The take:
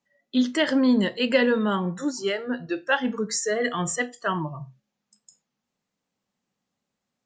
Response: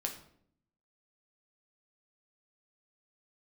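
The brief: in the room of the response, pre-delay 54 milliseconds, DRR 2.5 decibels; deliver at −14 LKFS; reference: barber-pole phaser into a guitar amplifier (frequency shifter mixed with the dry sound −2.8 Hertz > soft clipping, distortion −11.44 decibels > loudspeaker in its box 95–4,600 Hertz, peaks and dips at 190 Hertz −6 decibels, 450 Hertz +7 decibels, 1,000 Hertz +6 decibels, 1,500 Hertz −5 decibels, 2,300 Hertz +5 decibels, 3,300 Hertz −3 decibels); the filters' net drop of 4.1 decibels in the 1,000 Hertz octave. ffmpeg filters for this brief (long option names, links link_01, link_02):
-filter_complex "[0:a]equalizer=frequency=1000:width_type=o:gain=-8,asplit=2[link_01][link_02];[1:a]atrim=start_sample=2205,adelay=54[link_03];[link_02][link_03]afir=irnorm=-1:irlink=0,volume=-3.5dB[link_04];[link_01][link_04]amix=inputs=2:normalize=0,asplit=2[link_05][link_06];[link_06]afreqshift=-2.8[link_07];[link_05][link_07]amix=inputs=2:normalize=1,asoftclip=threshold=-21.5dB,highpass=95,equalizer=frequency=190:width_type=q:width=4:gain=-6,equalizer=frequency=450:width_type=q:width=4:gain=7,equalizer=frequency=1000:width_type=q:width=4:gain=6,equalizer=frequency=1500:width_type=q:width=4:gain=-5,equalizer=frequency=2300:width_type=q:width=4:gain=5,equalizer=frequency=3300:width_type=q:width=4:gain=-3,lowpass=frequency=4600:width=0.5412,lowpass=frequency=4600:width=1.3066,volume=14.5dB"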